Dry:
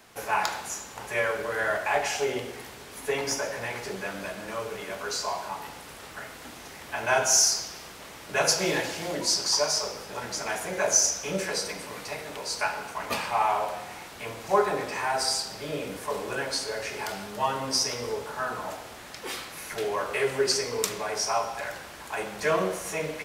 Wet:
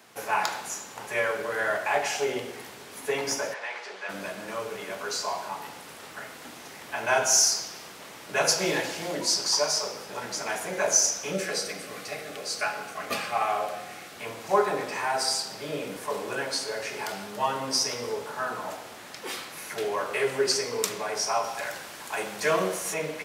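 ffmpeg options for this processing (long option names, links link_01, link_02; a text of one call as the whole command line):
ffmpeg -i in.wav -filter_complex "[0:a]asplit=3[link_01][link_02][link_03];[link_01]afade=type=out:start_time=3.53:duration=0.02[link_04];[link_02]highpass=690,lowpass=4600,afade=type=in:start_time=3.53:duration=0.02,afade=type=out:start_time=4.08:duration=0.02[link_05];[link_03]afade=type=in:start_time=4.08:duration=0.02[link_06];[link_04][link_05][link_06]amix=inputs=3:normalize=0,asettb=1/sr,asplit=3[link_07][link_08][link_09];[link_07]atrim=end=11.334[link_10];[link_08]atrim=start=11.33:end=14.16,asetpts=PTS-STARTPTS,afade=type=in:duration=0.004:curve=qsin,afade=type=out:start_time=2.826:duration=0.004:curve=qsin,asuperstop=centerf=940:order=20:qfactor=5.2[link_11];[link_09]atrim=start=14.156[link_12];[link_10][link_11]acrossfade=duration=0.004:curve1=hsin:curve2=qsin[link_13];[link_13][link_12]acrossfade=duration=0.004:curve1=qsin:curve2=hsin,asettb=1/sr,asplit=3[link_14][link_15][link_16];[link_14]atrim=end=21.444[link_17];[link_15]atrim=start=21.44:end=22.94,asetpts=PTS-STARTPTS,afade=type=in:duration=0.004:curve=qsin,afade=type=out:start_time=1.496:duration=0.004:curve=qsin,equalizer=frequency=14000:width_type=o:width=2.6:gain=5[link_18];[link_16]atrim=start=22.936[link_19];[link_17][link_18]acrossfade=duration=0.004:curve1=hsin:curve2=qsin[link_20];[link_20][link_19]acrossfade=duration=0.004:curve1=qsin:curve2=hsin,highpass=130" out.wav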